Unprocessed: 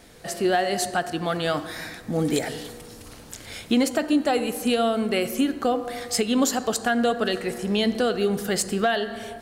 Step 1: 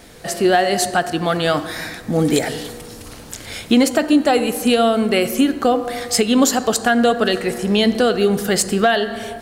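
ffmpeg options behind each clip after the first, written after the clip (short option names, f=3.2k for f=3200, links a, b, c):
-af "acrusher=bits=11:mix=0:aa=0.000001,volume=7dB"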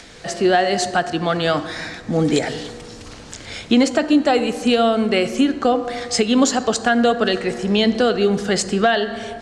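-filter_complex "[0:a]lowpass=f=7.4k:w=0.5412,lowpass=f=7.4k:w=1.3066,acrossover=split=170|1200[a][b][c];[c]acompressor=mode=upward:threshold=-37dB:ratio=2.5[d];[a][b][d]amix=inputs=3:normalize=0,volume=-1dB"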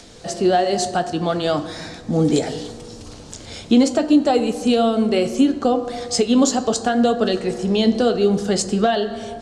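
-af "equalizer=f=1.9k:w=0.98:g=-10,flanger=delay=8.9:depth=4.2:regen=-66:speed=0.69:shape=sinusoidal,volume=5dB"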